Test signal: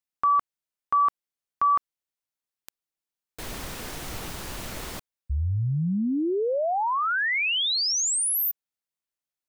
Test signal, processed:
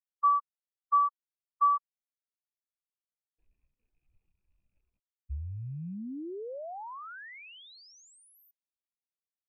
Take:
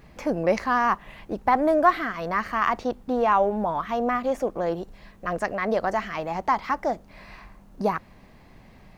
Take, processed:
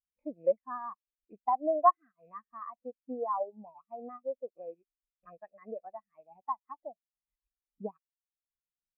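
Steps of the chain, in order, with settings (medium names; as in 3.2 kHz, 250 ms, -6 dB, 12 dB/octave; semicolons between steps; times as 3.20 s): rattle on loud lows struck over -40 dBFS, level -25 dBFS; transient shaper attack +4 dB, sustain -7 dB; spectral contrast expander 2.5:1; trim -6.5 dB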